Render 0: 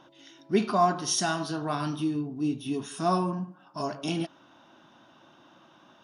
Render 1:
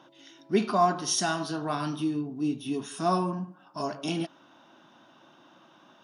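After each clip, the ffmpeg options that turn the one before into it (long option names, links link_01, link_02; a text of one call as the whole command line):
ffmpeg -i in.wav -af "highpass=130" out.wav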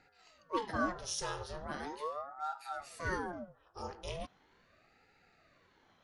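ffmpeg -i in.wav -af "aeval=exprs='val(0)*sin(2*PI*640*n/s+640*0.7/0.39*sin(2*PI*0.39*n/s))':channel_layout=same,volume=-8dB" out.wav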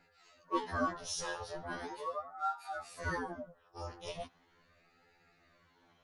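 ffmpeg -i in.wav -af "afftfilt=real='re*2*eq(mod(b,4),0)':imag='im*2*eq(mod(b,4),0)':win_size=2048:overlap=0.75,volume=2dB" out.wav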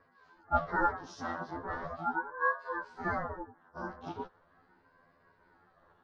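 ffmpeg -i in.wav -af "lowpass=frequency=5000:width=0.5412,lowpass=frequency=5000:width=1.3066,highshelf=frequency=1700:width_type=q:width=3:gain=-8.5,aeval=exprs='val(0)*sin(2*PI*270*n/s)':channel_layout=same,volume=4.5dB" out.wav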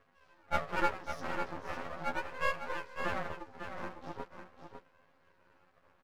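ffmpeg -i in.wav -af "aeval=exprs='max(val(0),0)':channel_layout=same,aecho=1:1:552:0.398,volume=1dB" out.wav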